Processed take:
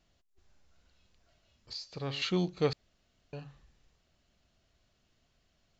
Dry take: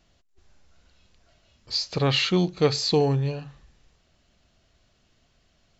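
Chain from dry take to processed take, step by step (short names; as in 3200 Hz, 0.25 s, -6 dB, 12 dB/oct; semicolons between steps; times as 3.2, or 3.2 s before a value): 1.73–2.22 resonator 140 Hz, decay 1.9 s, mix 60%; 2.73–3.33 room tone; gain -8 dB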